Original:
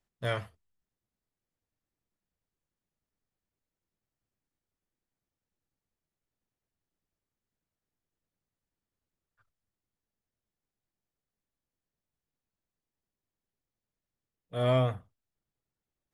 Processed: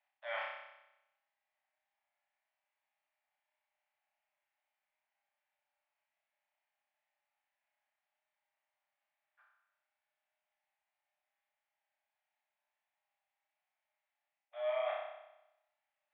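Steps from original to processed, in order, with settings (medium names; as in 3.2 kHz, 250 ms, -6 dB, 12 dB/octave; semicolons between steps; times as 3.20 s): rippled Chebyshev high-pass 580 Hz, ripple 9 dB; reverse; compression 8:1, threshold -48 dBFS, peak gain reduction 16 dB; reverse; Gaussian low-pass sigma 2.7 samples; flutter echo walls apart 5.3 m, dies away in 0.92 s; trim +10 dB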